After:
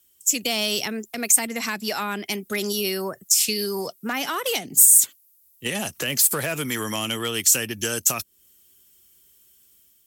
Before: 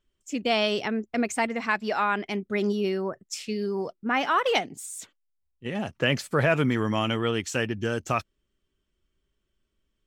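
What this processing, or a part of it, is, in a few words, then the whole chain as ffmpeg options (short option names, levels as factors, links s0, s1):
FM broadcast chain: -filter_complex "[0:a]highpass=73,dynaudnorm=f=350:g=3:m=1.68,acrossover=split=200|410[s0][s1][s2];[s0]acompressor=threshold=0.00891:ratio=4[s3];[s1]acompressor=threshold=0.0141:ratio=4[s4];[s2]acompressor=threshold=0.0224:ratio=4[s5];[s3][s4][s5]amix=inputs=3:normalize=0,aemphasis=mode=production:type=75fm,alimiter=limit=0.106:level=0:latency=1:release=98,asoftclip=type=hard:threshold=0.075,lowpass=f=15000:w=0.5412,lowpass=f=15000:w=1.3066,aemphasis=mode=production:type=75fm,volume=1.5"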